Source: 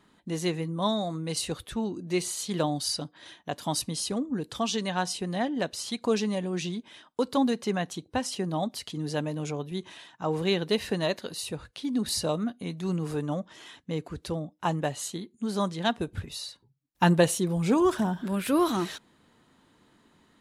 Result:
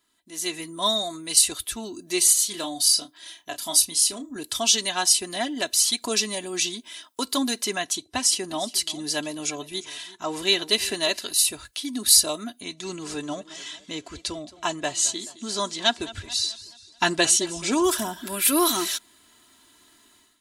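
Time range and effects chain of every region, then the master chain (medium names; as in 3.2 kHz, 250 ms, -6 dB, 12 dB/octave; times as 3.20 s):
2.33–4.36 s: flange 1 Hz, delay 1.2 ms, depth 4.9 ms, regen +73% + doubling 30 ms -9 dB
7.78–11.31 s: low-pass 10 kHz + delay 354 ms -18 dB
12.60–17.84 s: low-pass 7.7 kHz 24 dB/octave + modulated delay 216 ms, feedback 50%, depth 143 cents, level -18 dB
whole clip: pre-emphasis filter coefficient 0.9; comb 3 ms, depth 69%; level rider gain up to 15 dB; trim +1 dB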